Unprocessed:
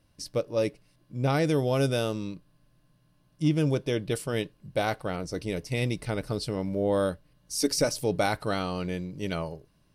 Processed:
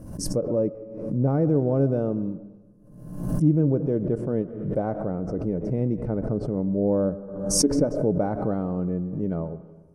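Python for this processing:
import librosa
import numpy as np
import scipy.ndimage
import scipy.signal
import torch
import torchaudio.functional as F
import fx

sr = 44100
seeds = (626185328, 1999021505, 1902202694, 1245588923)

y = fx.curve_eq(x, sr, hz=(120.0, 210.0, 310.0, 530.0, 1500.0, 2200.0, 3800.0, 6400.0, 9600.0), db=(0, 6, 2, 0, -13, -23, -28, -10, -7))
y = fx.rev_freeverb(y, sr, rt60_s=1.2, hf_ratio=0.75, predelay_ms=75, drr_db=15.0)
y = fx.env_lowpass_down(y, sr, base_hz=2100.0, full_db=-31.0)
y = fx.pre_swell(y, sr, db_per_s=58.0)
y = y * 10.0 ** (2.0 / 20.0)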